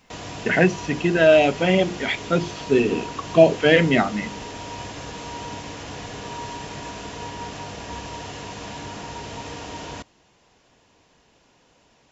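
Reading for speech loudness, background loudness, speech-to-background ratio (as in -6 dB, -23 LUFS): -19.5 LUFS, -34.5 LUFS, 15.0 dB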